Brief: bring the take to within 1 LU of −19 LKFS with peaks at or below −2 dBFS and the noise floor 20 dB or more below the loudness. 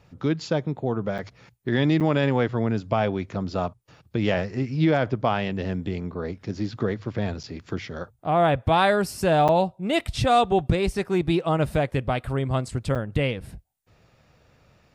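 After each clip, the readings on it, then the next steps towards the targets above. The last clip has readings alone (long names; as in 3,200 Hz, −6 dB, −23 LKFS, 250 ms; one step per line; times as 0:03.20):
number of dropouts 5; longest dropout 7.3 ms; integrated loudness −24.5 LKFS; sample peak −8.5 dBFS; target loudness −19.0 LKFS
→ repair the gap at 0:01.18/0:02.00/0:07.43/0:09.48/0:12.95, 7.3 ms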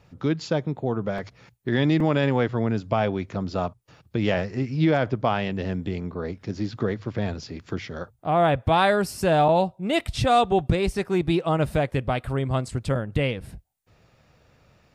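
number of dropouts 0; integrated loudness −24.5 LKFS; sample peak −8.5 dBFS; target loudness −19.0 LKFS
→ level +5.5 dB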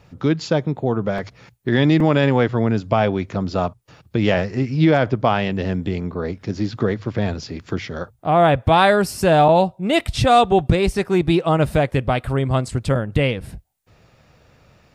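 integrated loudness −19.0 LKFS; sample peak −3.0 dBFS; background noise floor −56 dBFS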